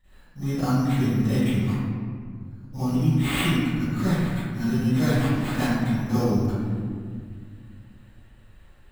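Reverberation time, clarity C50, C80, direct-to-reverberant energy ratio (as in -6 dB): 1.9 s, -9.0 dB, -3.5 dB, -17.5 dB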